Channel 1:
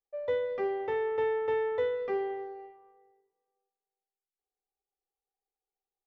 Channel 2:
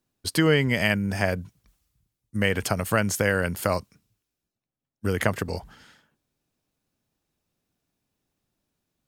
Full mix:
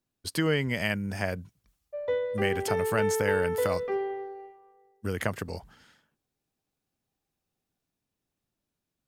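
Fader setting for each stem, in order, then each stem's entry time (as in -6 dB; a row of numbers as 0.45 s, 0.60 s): +1.5 dB, -6.0 dB; 1.80 s, 0.00 s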